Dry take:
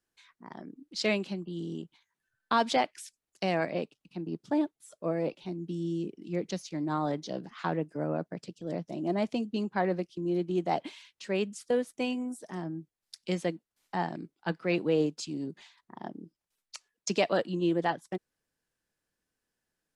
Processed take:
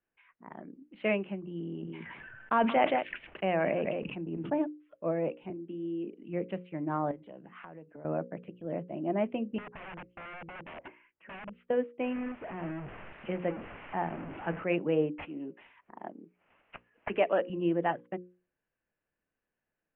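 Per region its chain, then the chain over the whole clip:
1.42–4.58 echo 0.176 s -19.5 dB + sustainer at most 21 dB/s
5.5–6.23 HPF 220 Hz 24 dB/oct + notch 910 Hz, Q 17
7.11–8.05 HPF 43 Hz + compressor 12:1, threshold -42 dBFS
9.58–11.5 LPF 2000 Hz 24 dB/oct + compressor 10:1, threshold -32 dBFS + wrapped overs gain 37 dB
12.02–14.64 delta modulation 64 kbps, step -33 dBFS + bell 4900 Hz -12 dB 1.1 oct
15.18–17.5 HPF 260 Hz + upward compressor, threshold -46 dBFS + careless resampling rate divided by 6×, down none, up hold
whole clip: steep low-pass 2900 Hz 72 dB/oct; bell 590 Hz +3.5 dB 0.53 oct; notches 60/120/180/240/300/360/420/480/540 Hz; gain -1.5 dB

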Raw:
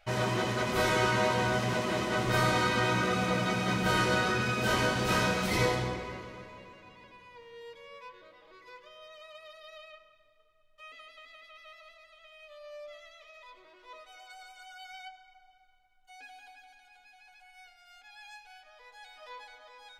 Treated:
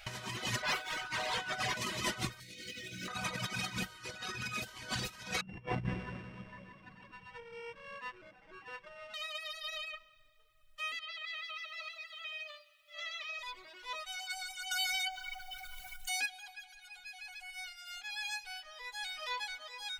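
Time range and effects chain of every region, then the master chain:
0.62–1.77 overdrive pedal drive 23 dB, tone 1800 Hz, clips at -15 dBFS + resonator 150 Hz, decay 0.19 s, mix 80%
2.4–3.08 G.711 law mismatch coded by mu + Butterworth band-stop 970 Hz, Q 0.78 + doubler 22 ms -3 dB
5.41–9.14 sample sorter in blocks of 16 samples + LPF 1700 Hz + bell 170 Hz +11.5 dB 1.1 oct
10.99–13.39 negative-ratio compressor -52 dBFS, ratio -0.5 + BPF 580–4800 Hz + lo-fi delay 0.126 s, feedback 80%, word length 13-bit, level -14 dB
14.71–16.26 high shelf 6800 Hz +9.5 dB + fast leveller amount 70%
whole clip: reverb removal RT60 2 s; passive tone stack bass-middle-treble 5-5-5; negative-ratio compressor -52 dBFS, ratio -0.5; gain +15 dB

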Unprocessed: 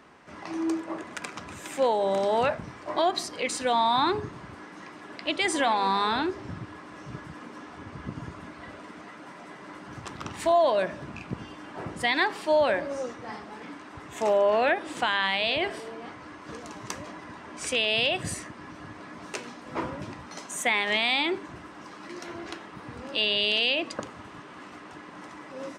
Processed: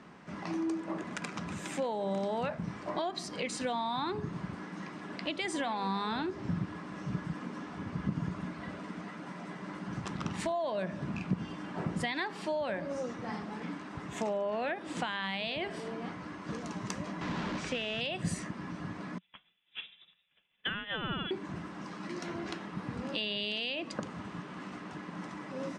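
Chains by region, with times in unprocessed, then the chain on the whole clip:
17.21–18.01 delta modulation 64 kbps, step -29.5 dBFS + air absorption 140 m
19.18–21.31 inverted band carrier 3700 Hz + upward expander 2.5:1, over -44 dBFS
whole clip: compressor 3:1, threshold -33 dBFS; LPF 8800 Hz 12 dB/oct; bell 180 Hz +12.5 dB 0.73 oct; gain -1.5 dB

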